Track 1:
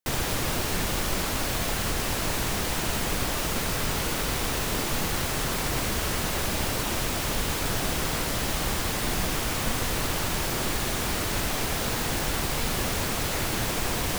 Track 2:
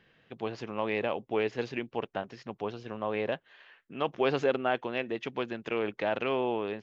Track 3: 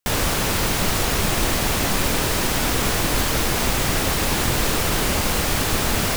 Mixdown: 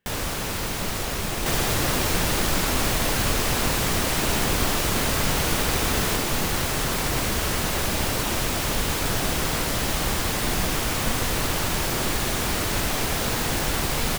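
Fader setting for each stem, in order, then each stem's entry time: +3.0, −13.5, −7.0 decibels; 1.40, 0.00, 0.00 seconds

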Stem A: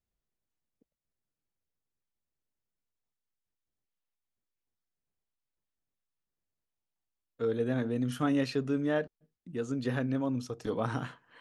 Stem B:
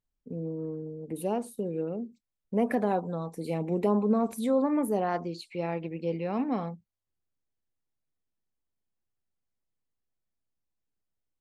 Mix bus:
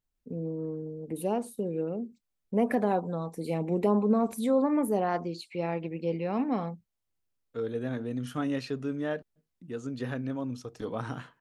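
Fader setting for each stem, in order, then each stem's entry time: −2.5, +0.5 decibels; 0.15, 0.00 seconds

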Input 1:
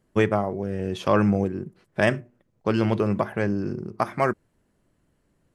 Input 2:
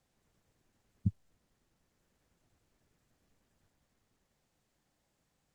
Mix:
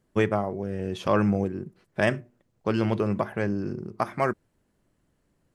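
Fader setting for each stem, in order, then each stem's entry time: −2.5, −7.0 decibels; 0.00, 0.00 seconds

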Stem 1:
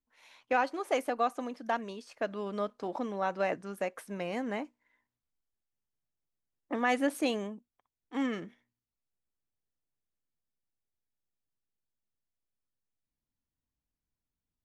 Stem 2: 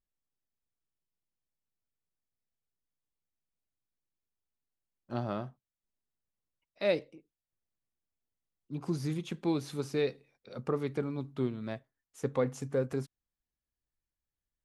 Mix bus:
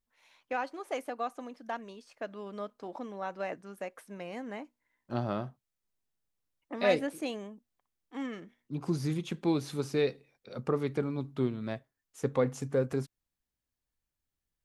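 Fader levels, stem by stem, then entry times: −5.5, +2.0 decibels; 0.00, 0.00 seconds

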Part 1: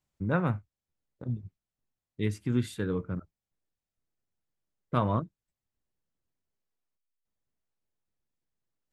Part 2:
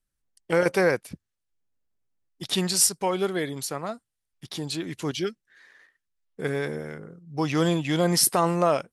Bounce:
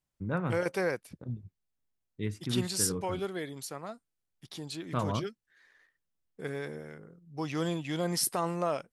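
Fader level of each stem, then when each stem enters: −4.5, −9.0 decibels; 0.00, 0.00 seconds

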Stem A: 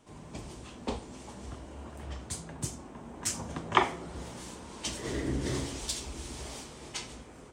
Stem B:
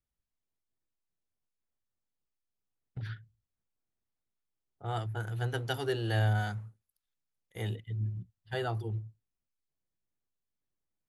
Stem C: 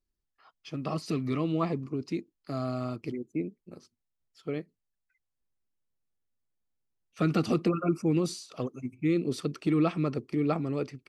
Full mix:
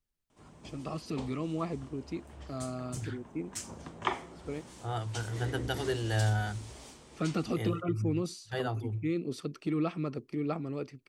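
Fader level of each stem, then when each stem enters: −7.5, −0.5, −5.5 decibels; 0.30, 0.00, 0.00 seconds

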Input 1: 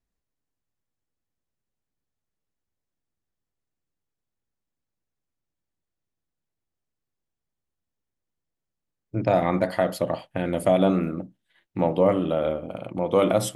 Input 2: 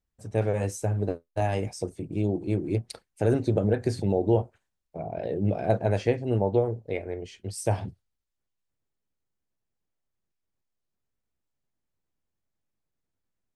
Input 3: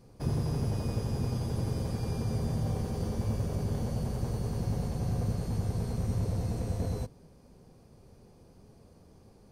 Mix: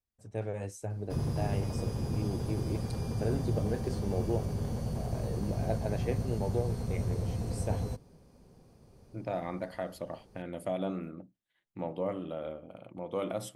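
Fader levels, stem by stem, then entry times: −14.0, −10.0, −2.0 decibels; 0.00, 0.00, 0.90 seconds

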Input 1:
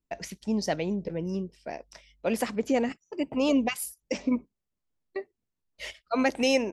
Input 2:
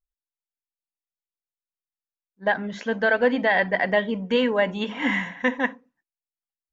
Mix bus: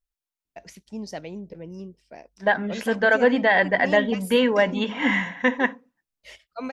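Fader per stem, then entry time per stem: −6.5, +2.0 decibels; 0.45, 0.00 seconds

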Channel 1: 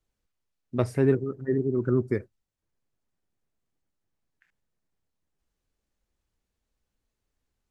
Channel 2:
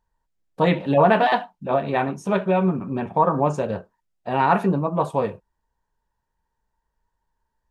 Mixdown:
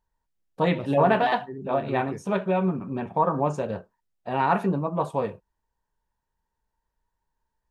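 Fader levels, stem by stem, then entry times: −12.0, −4.0 decibels; 0.00, 0.00 seconds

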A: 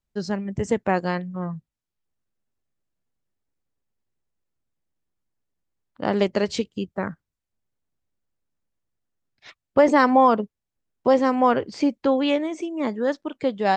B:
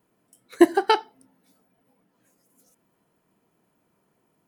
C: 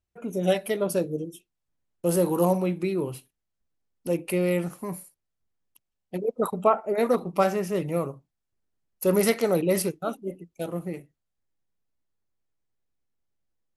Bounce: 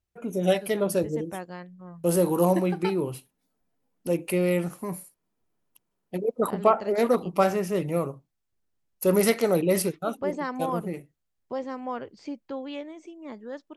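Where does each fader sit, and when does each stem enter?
−14.5, −14.5, +0.5 decibels; 0.45, 1.95, 0.00 seconds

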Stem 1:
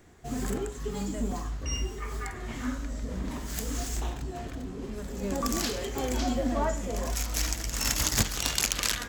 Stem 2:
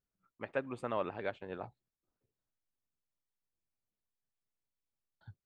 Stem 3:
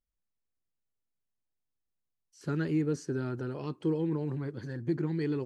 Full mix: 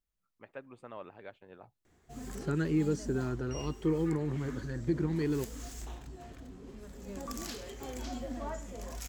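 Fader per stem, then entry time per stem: −11.0, −10.0, 0.0 decibels; 1.85, 0.00, 0.00 seconds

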